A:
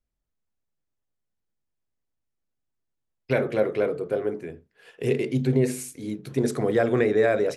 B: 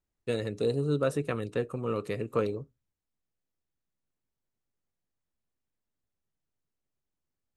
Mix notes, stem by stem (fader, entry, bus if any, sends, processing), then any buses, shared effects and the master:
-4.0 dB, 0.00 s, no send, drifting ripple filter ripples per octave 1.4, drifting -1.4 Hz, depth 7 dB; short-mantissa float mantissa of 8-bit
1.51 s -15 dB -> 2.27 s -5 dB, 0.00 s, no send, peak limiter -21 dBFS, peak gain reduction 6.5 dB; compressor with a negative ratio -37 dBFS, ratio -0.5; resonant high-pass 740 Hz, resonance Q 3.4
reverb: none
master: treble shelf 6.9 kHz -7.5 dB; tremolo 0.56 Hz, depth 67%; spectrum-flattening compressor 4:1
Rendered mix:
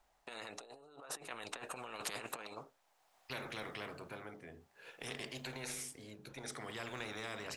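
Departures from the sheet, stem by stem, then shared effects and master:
stem A -4.0 dB -> -13.0 dB; stem B -15.0 dB -> -5.5 dB

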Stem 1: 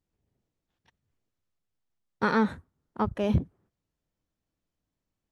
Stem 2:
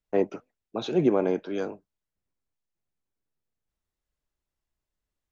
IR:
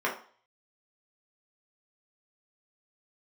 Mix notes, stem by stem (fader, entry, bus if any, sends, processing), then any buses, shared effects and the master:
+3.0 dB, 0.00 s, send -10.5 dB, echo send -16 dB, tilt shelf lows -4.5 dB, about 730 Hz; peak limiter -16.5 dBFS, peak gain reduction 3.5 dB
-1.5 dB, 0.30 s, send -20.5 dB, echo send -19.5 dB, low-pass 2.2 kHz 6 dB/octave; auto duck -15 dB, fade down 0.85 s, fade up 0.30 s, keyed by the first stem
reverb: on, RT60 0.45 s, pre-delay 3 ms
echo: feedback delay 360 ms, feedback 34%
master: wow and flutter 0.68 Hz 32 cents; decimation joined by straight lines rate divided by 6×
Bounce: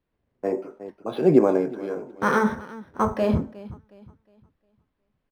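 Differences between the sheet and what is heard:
stem 1: missing tilt shelf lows -4.5 dB, about 730 Hz; stem 2 -1.5 dB -> +5.5 dB

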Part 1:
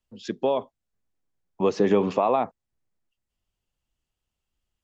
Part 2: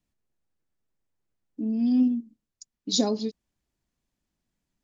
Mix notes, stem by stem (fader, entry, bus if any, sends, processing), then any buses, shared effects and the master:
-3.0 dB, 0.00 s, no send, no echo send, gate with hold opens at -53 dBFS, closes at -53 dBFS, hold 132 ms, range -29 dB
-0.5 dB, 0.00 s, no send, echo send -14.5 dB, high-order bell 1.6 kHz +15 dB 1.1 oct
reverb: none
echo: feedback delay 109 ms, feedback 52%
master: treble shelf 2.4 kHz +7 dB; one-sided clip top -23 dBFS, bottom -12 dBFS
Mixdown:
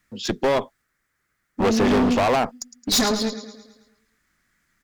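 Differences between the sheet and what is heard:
stem 1 -3.0 dB -> +8.0 dB; stem 2 -0.5 dB -> +7.5 dB

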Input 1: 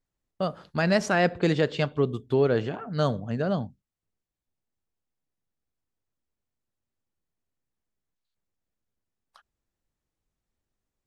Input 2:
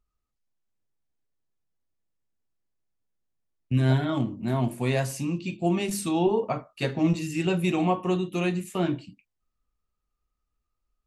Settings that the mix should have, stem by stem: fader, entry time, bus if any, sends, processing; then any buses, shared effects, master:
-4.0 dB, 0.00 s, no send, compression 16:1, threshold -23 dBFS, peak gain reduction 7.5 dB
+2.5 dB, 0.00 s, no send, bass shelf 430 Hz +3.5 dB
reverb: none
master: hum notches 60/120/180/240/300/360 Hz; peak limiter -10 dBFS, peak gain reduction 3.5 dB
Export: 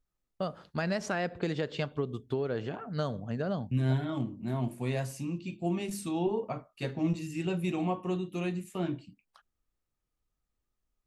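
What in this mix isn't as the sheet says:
stem 2 +2.5 dB -> -9.0 dB; master: missing hum notches 60/120/180/240/300/360 Hz

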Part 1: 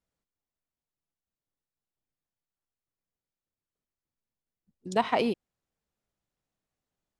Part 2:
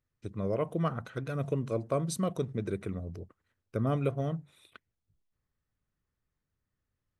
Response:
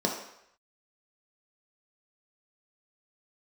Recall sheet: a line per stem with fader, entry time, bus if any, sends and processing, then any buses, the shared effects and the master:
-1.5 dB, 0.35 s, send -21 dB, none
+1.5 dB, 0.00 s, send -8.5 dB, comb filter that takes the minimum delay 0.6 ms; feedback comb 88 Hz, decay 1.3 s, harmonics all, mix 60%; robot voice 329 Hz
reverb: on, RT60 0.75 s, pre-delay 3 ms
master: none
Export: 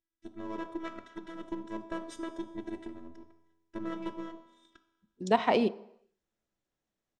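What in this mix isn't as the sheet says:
stem 2: send -8.5 dB -> -15 dB; master: extra low-pass 7.9 kHz 24 dB/octave

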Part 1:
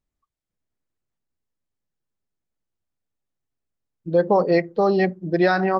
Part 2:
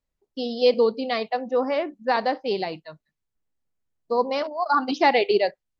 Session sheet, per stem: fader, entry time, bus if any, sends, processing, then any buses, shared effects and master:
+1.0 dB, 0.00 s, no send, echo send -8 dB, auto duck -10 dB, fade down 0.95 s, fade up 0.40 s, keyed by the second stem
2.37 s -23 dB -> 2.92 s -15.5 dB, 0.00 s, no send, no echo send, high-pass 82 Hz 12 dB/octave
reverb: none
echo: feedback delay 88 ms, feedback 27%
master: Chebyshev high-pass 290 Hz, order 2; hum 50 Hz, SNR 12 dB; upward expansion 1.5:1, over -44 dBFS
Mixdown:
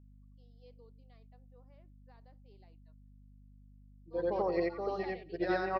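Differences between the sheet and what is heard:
stem 1 +1.0 dB -> -6.5 dB; stem 2 -23.0 dB -> -33.5 dB

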